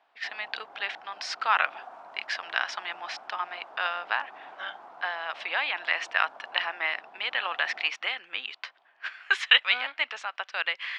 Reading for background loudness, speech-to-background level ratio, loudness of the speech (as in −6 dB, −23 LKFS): −48.0 LKFS, 19.0 dB, −29.0 LKFS